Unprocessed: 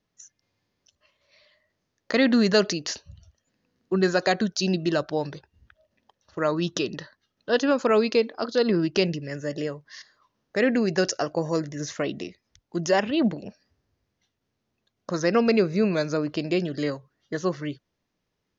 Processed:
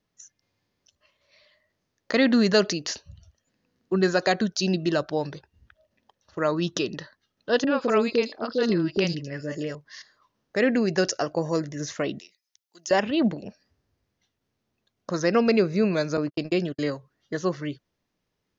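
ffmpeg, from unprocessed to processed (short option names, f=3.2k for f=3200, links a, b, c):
-filter_complex "[0:a]asettb=1/sr,asplit=3[a][b][c];[a]atrim=end=7.644[d];[b]atrim=start=7.64:end=9.75,asetpts=PTS-STARTPTS,afade=t=in:d=0.004:c=qsin,afade=t=out:st=2.106:d=0.004:c=qsin,acrossover=split=600|4700[e][f][g];[f]adelay=30[h];[g]adelay=110[i];[e][h][i]amix=inputs=3:normalize=0,atrim=end_sample=93051[j];[c]atrim=start=9.746[k];[d][j]acrossfade=d=0.004:c1=hsin:c2=qsin[l];[l][k]acrossfade=d=0.004:c1=qsin:c2=hsin,asettb=1/sr,asplit=3[m][n][o];[m]atrim=end=12.194[p];[n]atrim=start=12.19:end=12.91,asetpts=PTS-STARTPTS,afade=t=in:d=0.004:c=qsin,afade=t=out:st=0.716:d=0.004:c=qsin,aderivative[q];[o]atrim=start=12.906[r];[p][q]acrossfade=d=0.004:c1=hsin:c2=qsin[s];[s][r]acrossfade=d=0.004:c1=qsin:c2=hsin,asettb=1/sr,asplit=3[t][u][v];[t]atrim=end=16.174[w];[u]atrim=start=16.17:end=16.79,asetpts=PTS-STARTPTS,afade=t=in:d=0.004:c=qsin,afade=t=out:st=0.616:d=0.004:c=qsin,agate=range=-52dB:threshold=-31dB:ratio=16:release=100:detection=peak[x];[v]atrim=start=16.786[y];[w][x]acrossfade=d=0.004:c1=hsin:c2=qsin[z];[z][y]acrossfade=d=0.004:c1=qsin:c2=hsin"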